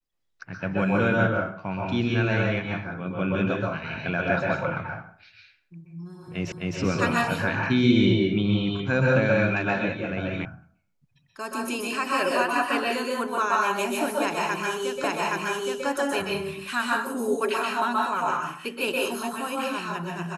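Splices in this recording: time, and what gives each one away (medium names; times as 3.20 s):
6.52 s: repeat of the last 0.26 s
10.45 s: sound stops dead
15.04 s: repeat of the last 0.82 s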